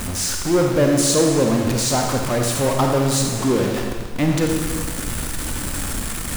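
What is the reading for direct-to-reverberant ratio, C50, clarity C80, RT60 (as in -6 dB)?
1.5 dB, 2.5 dB, 4.0 dB, 1.6 s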